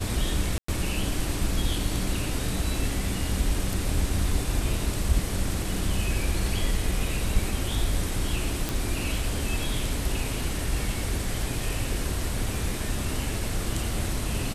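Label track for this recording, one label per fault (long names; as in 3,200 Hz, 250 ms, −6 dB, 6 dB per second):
0.580000	0.680000	drop-out 104 ms
8.690000	8.690000	click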